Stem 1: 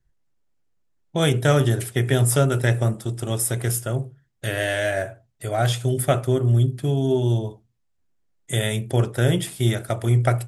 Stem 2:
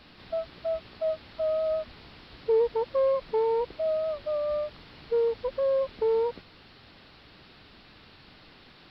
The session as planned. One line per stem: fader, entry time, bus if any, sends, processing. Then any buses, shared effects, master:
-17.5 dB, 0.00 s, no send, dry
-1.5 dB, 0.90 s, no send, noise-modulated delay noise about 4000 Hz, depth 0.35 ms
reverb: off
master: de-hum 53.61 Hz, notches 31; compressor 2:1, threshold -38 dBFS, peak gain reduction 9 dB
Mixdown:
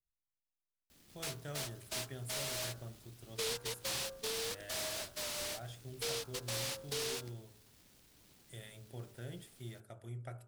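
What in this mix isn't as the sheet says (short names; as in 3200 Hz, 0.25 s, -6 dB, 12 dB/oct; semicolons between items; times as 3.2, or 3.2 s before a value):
stem 1 -17.5 dB -> -26.5 dB; stem 2 -1.5 dB -> -11.0 dB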